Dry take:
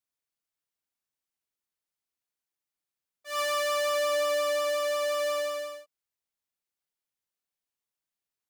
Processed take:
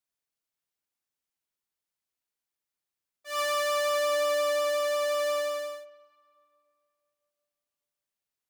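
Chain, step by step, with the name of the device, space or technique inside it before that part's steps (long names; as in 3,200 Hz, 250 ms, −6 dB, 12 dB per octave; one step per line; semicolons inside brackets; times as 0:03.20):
filtered reverb send (on a send: high-pass filter 360 Hz 24 dB per octave + low-pass filter 3,800 Hz + convolution reverb RT60 2.6 s, pre-delay 40 ms, DRR 17 dB)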